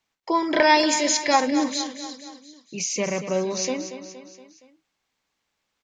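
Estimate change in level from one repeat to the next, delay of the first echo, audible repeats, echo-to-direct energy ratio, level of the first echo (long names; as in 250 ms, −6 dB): −5.5 dB, 234 ms, 4, −9.5 dB, −11.0 dB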